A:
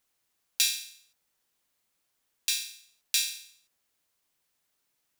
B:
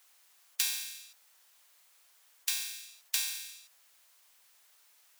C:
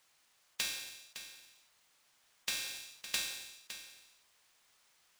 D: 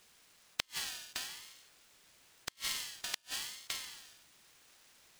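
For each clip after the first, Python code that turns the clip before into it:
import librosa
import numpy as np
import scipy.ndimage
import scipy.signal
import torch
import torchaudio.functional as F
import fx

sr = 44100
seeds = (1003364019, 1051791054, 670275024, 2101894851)

y1 = scipy.signal.sosfilt(scipy.signal.butter(2, 720.0, 'highpass', fs=sr, output='sos'), x)
y1 = fx.spectral_comp(y1, sr, ratio=2.0)
y2 = scipy.ndimage.median_filter(y1, 3, mode='constant')
y2 = fx.rider(y2, sr, range_db=4, speed_s=0.5)
y2 = y2 + 10.0 ** (-11.5 / 20.0) * np.pad(y2, (int(560 * sr / 1000.0), 0))[:len(y2)]
y3 = fx.gate_flip(y2, sr, shuts_db=-25.0, range_db=-41)
y3 = fx.ring_lfo(y3, sr, carrier_hz=710.0, swing_pct=30, hz=0.95)
y3 = y3 * 10.0 ** (9.5 / 20.0)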